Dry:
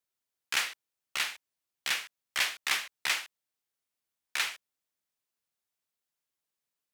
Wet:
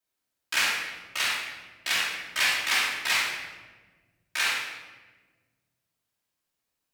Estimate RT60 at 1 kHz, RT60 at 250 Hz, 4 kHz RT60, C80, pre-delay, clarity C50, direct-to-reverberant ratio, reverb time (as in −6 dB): 1.2 s, 2.1 s, 0.90 s, 2.5 dB, 3 ms, −0.5 dB, −10.0 dB, 1.3 s